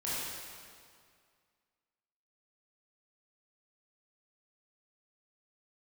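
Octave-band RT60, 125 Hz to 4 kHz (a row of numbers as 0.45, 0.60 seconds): 2.2, 2.1, 2.1, 2.1, 1.9, 1.8 seconds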